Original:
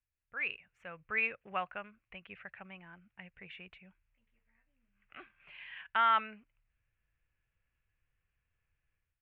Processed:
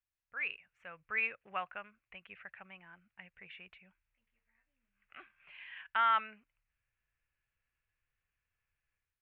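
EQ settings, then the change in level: tilt shelf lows -5.5 dB, about 800 Hz; treble shelf 3.6 kHz -10.5 dB; -2.5 dB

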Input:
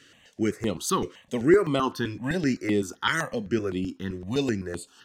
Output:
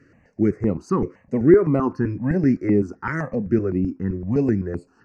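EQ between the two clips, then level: Chebyshev band-stop 2.3–5 kHz, order 2; tape spacing loss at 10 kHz 27 dB; bass shelf 500 Hz +10 dB; +1.0 dB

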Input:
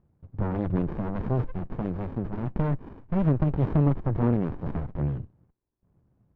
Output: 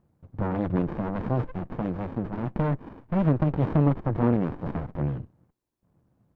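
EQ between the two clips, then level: bass shelf 110 Hz -10 dB; band-stop 400 Hz, Q 12; +3.5 dB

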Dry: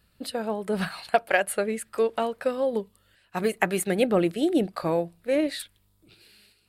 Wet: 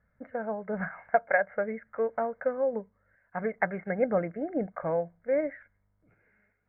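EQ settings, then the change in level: rippled Chebyshev low-pass 2.2 kHz, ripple 6 dB; peaking EQ 360 Hz -14 dB 0.38 oct; 0.0 dB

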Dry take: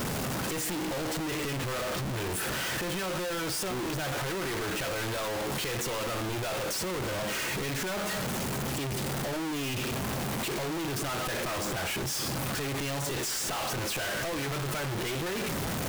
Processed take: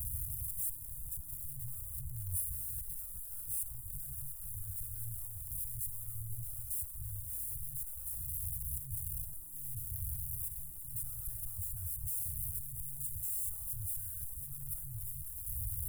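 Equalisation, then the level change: inverse Chebyshev band-stop 180–5800 Hz, stop band 40 dB; +2.5 dB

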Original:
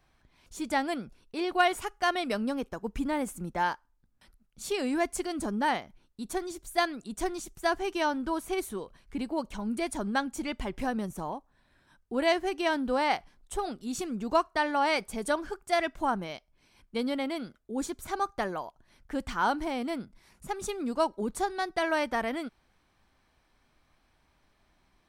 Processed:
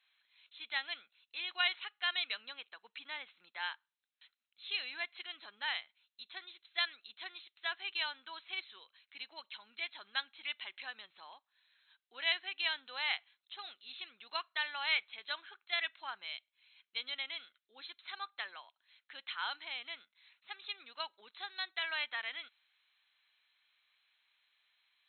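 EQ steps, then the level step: Chebyshev high-pass 3 kHz, order 2; brick-wall FIR low-pass 4.2 kHz; +4.0 dB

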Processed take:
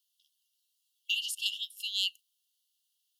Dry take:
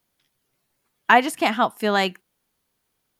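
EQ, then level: brick-wall FIR high-pass 2.7 kHz; treble shelf 4.9 kHz -5.5 dB; +1.5 dB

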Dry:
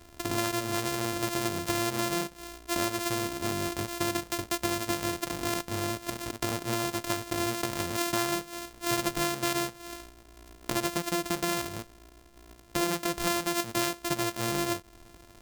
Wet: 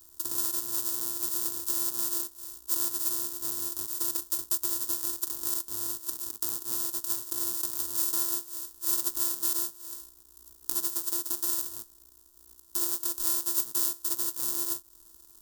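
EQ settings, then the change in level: pre-emphasis filter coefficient 0.8; treble shelf 6.8 kHz +8 dB; static phaser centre 600 Hz, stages 6; 0.0 dB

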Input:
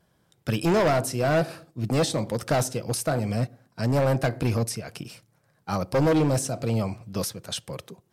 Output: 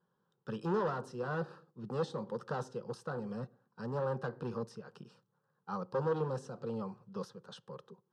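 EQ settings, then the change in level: high-pass 220 Hz 6 dB/octave; low-pass 2.5 kHz 12 dB/octave; static phaser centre 440 Hz, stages 8; -7.0 dB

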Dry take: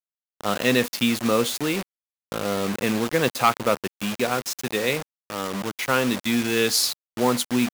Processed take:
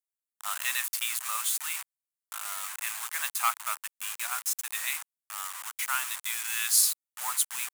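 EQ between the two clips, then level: inverse Chebyshev high-pass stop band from 490 Hz, stop band 40 dB; resonant high shelf 6.4 kHz +8.5 dB, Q 1.5; -6.0 dB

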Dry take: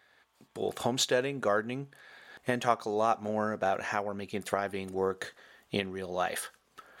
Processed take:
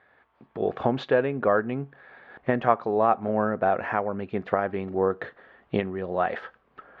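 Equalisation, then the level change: low-pass 1.9 kHz 12 dB/octave; distance through air 180 m; +7.0 dB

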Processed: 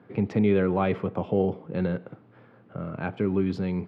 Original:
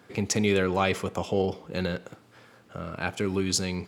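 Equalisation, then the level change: high-pass 110 Hz 24 dB/octave; distance through air 420 m; tilt EQ -2 dB/octave; 0.0 dB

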